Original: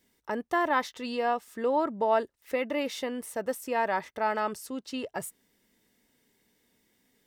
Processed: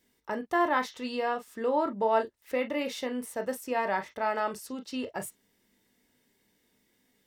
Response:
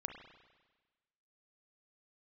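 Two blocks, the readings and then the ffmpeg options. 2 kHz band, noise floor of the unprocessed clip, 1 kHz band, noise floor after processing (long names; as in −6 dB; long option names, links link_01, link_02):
−0.5 dB, −75 dBFS, −1.0 dB, −72 dBFS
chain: -filter_complex "[1:a]atrim=start_sample=2205,atrim=end_sample=3969,asetrate=70560,aresample=44100[link_01];[0:a][link_01]afir=irnorm=-1:irlink=0,volume=6dB"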